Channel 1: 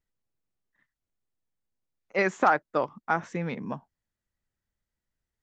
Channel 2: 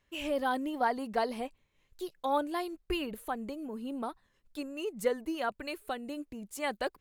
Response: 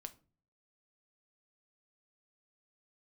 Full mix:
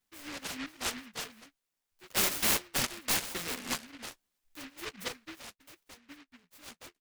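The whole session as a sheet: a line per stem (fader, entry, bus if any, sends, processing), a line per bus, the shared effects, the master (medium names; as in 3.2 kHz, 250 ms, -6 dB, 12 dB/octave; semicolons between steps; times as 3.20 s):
-17.5 dB, 0.00 s, no send, high-pass 620 Hz 12 dB/octave; sine folder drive 18 dB, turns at -10 dBFS
1.16 s -8.5 dB -> 1.63 s -16 dB -> 3.66 s -16 dB -> 4.17 s -4 dB -> 4.99 s -4 dB -> 5.52 s -14.5 dB, 0.00 s, no send, reverb removal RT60 1.8 s; flange 0.53 Hz, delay 9.8 ms, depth 2.4 ms, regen +34%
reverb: none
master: flange 0.36 Hz, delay 8 ms, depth 6.1 ms, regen +13%; graphic EQ 125/250/1000/2000/4000/8000 Hz -5/+11/+9/-5/+10/+11 dB; delay time shaken by noise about 1.9 kHz, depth 0.42 ms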